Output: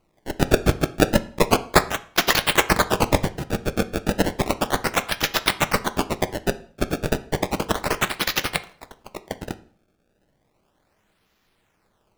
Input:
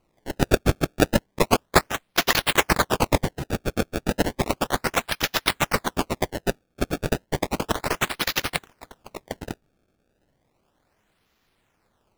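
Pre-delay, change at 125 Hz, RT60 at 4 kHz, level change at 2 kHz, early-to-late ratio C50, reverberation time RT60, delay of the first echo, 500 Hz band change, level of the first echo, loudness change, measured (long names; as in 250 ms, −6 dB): 4 ms, +1.5 dB, 0.45 s, +2.0 dB, 17.5 dB, 0.45 s, no echo audible, +2.0 dB, no echo audible, +2.0 dB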